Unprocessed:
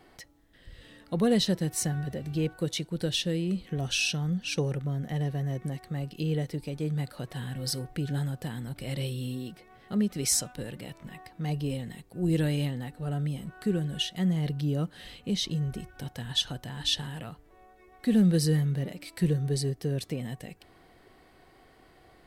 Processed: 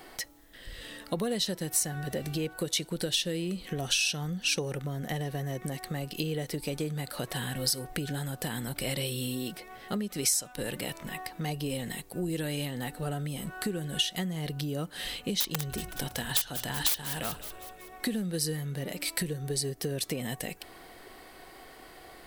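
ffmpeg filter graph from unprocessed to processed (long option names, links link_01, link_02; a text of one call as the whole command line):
ffmpeg -i in.wav -filter_complex "[0:a]asettb=1/sr,asplit=3[link_01][link_02][link_03];[link_01]atrim=end=15.404[link_04];[link_02]atrim=start=15.4:end=18.07,asetpts=PTS-STARTPTS,afade=type=in:duration=0.004:curve=qsin,afade=type=out:start_time=2.666:duration=0.004:curve=qsin,bandreject=frequency=60:width_type=h:width=6,bandreject=frequency=120:width_type=h:width=6,bandreject=frequency=180:width_type=h:width=6,aeval=exprs='(mod(15*val(0)+1,2)-1)/15':channel_layout=same,asplit=6[link_05][link_06][link_07][link_08][link_09][link_10];[link_06]adelay=187,afreqshift=-78,volume=-16.5dB[link_11];[link_07]adelay=374,afreqshift=-156,volume=-21.9dB[link_12];[link_08]adelay=561,afreqshift=-234,volume=-27.2dB[link_13];[link_09]adelay=748,afreqshift=-312,volume=-32.6dB[link_14];[link_10]adelay=935,afreqshift=-390,volume=-37.9dB[link_15];[link_05][link_11][link_12][link_13][link_14][link_15]amix=inputs=6:normalize=0,atrim=end_sample=117747[link_16];[link_03]atrim=start=18.066[link_17];[link_04][link_16]acrossfade=duration=0.004:curve1=hsin:curve2=qsin[link_18];[link_18][link_17]acrossfade=duration=0.004:curve1=qsin:curve2=hsin,highshelf=frequency=7400:gain=9.5,acompressor=threshold=-33dB:ratio=12,equalizer=frequency=96:width_type=o:width=2.8:gain=-9.5,volume=9dB" out.wav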